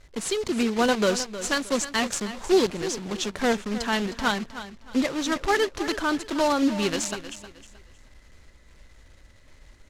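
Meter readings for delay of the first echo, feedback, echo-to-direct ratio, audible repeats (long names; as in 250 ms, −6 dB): 312 ms, 29%, −12.5 dB, 3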